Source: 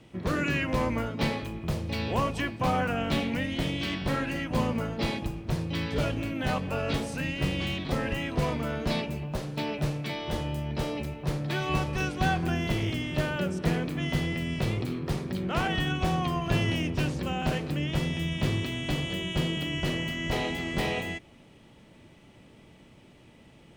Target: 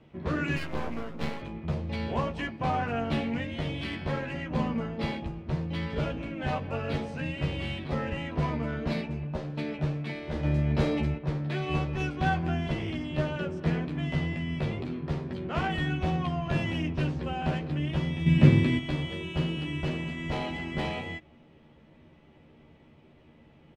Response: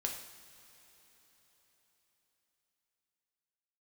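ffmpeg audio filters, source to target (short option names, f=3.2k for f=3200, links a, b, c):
-filter_complex "[0:a]asettb=1/sr,asplit=3[a][b][c];[a]atrim=end=10.434[d];[b]atrim=start=10.43:end=11.18,asetpts=PTS-STARTPTS,afade=t=in:d=0.004:c=qsin,afade=t=out:st=0.746:d=0.004:c=qsin,acontrast=63[e];[c]atrim=start=11.176[f];[d][e]acrossfade=d=0.004:c1=hsin:c2=qsin[g];[g][f]acrossfade=d=0.004:c1=qsin:c2=hsin,asettb=1/sr,asplit=3[h][i][j];[h]atrim=end=18.264[k];[i]atrim=start=18.26:end=18.78,asetpts=PTS-STARTPTS,afade=t=in:d=0.004:c=qsin,afade=t=out:st=0.516:d=0.004:c=qsin,equalizer=f=125:t=o:w=1:g=12,equalizer=f=250:t=o:w=1:g=9,equalizer=f=500:t=o:w=1:g=6,equalizer=f=2k:t=o:w=1:g=8[l];[j]atrim=start=18.776[m];[k][l]acrossfade=d=0.004:c1=hsin:c2=qsin[n];[n][m]acrossfade=d=0.004:c1=qsin:c2=hsin,adynamicsmooth=sensitivity=2:basefreq=3.2k,asettb=1/sr,asplit=3[o][p][q];[o]atrim=end=0.564[r];[p]atrim=start=0.56:end=1.41,asetpts=PTS-STARTPTS,afade=t=in:d=0.004:c=qsin,afade=t=out:st=0.846:d=0.004:c=qsin,aeval=exprs='max(val(0),0)':c=same[s];[q]atrim=start=1.406[t];[r][s]acrossfade=d=0.004:c1=hsin:c2=qsin[u];[u][t]acrossfade=d=0.004:c1=qsin:c2=hsin,asplit=2[v][w];[w]adelay=13,volume=-3dB[x];[v][x]amix=inputs=2:normalize=0,volume=-3.5dB"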